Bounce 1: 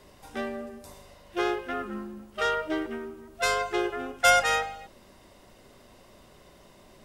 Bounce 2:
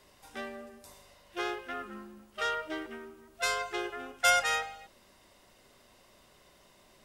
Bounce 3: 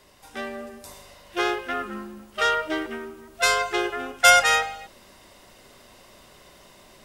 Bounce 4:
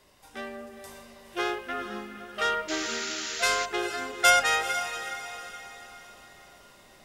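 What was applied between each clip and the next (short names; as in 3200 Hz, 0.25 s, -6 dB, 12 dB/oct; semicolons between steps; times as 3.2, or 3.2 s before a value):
tilt shelf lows -4 dB, about 820 Hz; gain -6.5 dB
AGC gain up to 5 dB; gain +5 dB
diffused feedback echo 0.458 s, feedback 45%, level -10 dB; painted sound noise, 2.68–3.66, 1200–7400 Hz -30 dBFS; gain -5 dB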